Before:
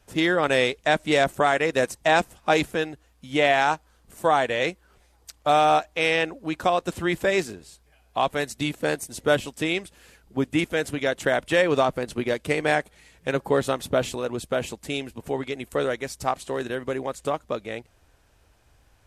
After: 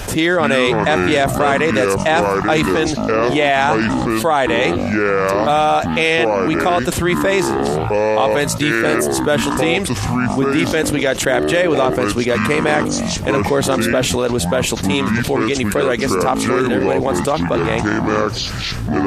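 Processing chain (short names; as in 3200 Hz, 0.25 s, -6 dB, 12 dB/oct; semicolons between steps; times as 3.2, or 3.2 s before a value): echoes that change speed 0.177 s, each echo -6 st, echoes 3, each echo -6 dB; fast leveller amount 70%; gain +3 dB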